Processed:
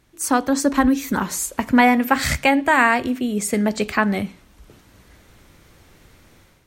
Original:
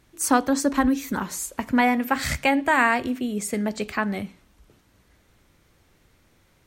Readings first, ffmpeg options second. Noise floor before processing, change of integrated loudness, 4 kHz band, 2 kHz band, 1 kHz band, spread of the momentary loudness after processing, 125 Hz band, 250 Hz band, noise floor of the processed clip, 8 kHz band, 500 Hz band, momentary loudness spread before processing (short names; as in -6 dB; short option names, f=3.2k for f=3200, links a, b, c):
-62 dBFS, +4.5 dB, +4.5 dB, +4.5 dB, +4.0 dB, 8 LU, +5.5 dB, +4.5 dB, -54 dBFS, +3.5 dB, +4.5 dB, 9 LU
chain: -af "dynaudnorm=f=320:g=3:m=10dB"